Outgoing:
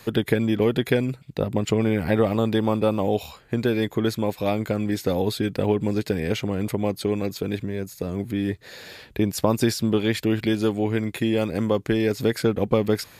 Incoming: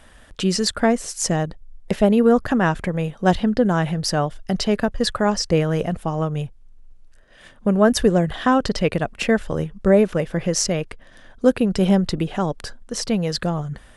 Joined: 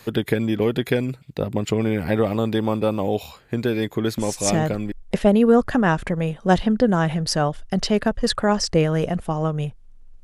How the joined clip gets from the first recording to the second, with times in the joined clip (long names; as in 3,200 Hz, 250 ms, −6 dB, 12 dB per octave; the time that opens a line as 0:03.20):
outgoing
0:04.55: continue with incoming from 0:01.32, crossfade 0.74 s logarithmic